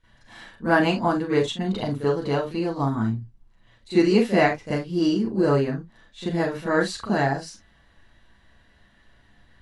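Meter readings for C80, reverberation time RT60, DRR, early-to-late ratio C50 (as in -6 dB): 12.0 dB, not exponential, -14.5 dB, 6.0 dB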